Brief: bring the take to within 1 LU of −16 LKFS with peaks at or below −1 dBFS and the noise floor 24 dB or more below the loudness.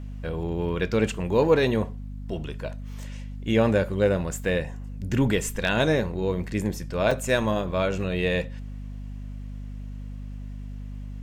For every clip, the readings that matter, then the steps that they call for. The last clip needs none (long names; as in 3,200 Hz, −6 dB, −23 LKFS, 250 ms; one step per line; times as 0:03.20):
number of dropouts 1; longest dropout 4.5 ms; mains hum 50 Hz; hum harmonics up to 250 Hz; level of the hum −33 dBFS; integrated loudness −25.5 LKFS; sample peak −8.5 dBFS; target loudness −16.0 LKFS
→ repair the gap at 0:07.11, 4.5 ms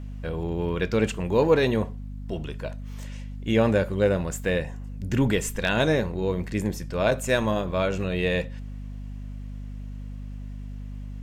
number of dropouts 0; mains hum 50 Hz; hum harmonics up to 250 Hz; level of the hum −33 dBFS
→ hum removal 50 Hz, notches 5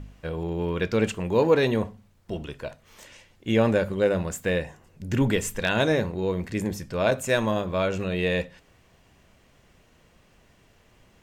mains hum none found; integrated loudness −25.5 LKFS; sample peak −8.5 dBFS; target loudness −16.0 LKFS
→ level +9.5 dB
brickwall limiter −1 dBFS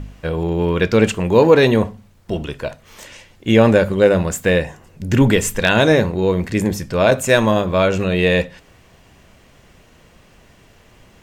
integrated loudness −16.0 LKFS; sample peak −1.0 dBFS; background noise floor −50 dBFS